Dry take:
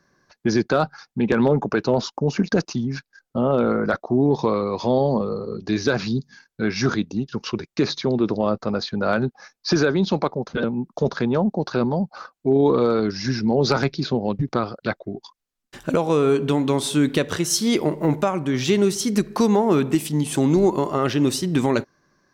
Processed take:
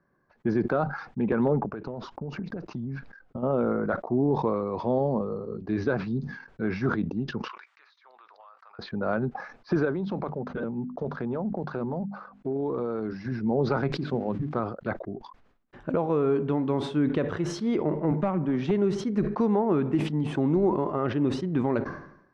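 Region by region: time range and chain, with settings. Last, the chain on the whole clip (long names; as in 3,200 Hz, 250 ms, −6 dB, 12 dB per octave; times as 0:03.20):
0:01.60–0:03.43: downward compressor 16 to 1, threshold −26 dBFS + low-shelf EQ 180 Hz +6 dB
0:07.48–0:08.79: high-pass filter 1,100 Hz 24 dB per octave + downward compressor 10 to 1, threshold −40 dBFS
0:09.85–0:13.32: one scale factor per block 7 bits + mains-hum notches 50/100/150/200/250 Hz + downward compressor 4 to 1, threshold −20 dBFS
0:13.92–0:14.60: spike at every zero crossing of −26.5 dBFS + low-pass filter 6,600 Hz + mains-hum notches 50/100/150/200/250/300/350 Hz
0:18.11–0:18.71: low shelf with overshoot 120 Hz −12 dB, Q 3 + hard clipping −13.5 dBFS
whole clip: low-pass filter 1,500 Hz 12 dB per octave; level that may fall only so fast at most 78 dB per second; level −6 dB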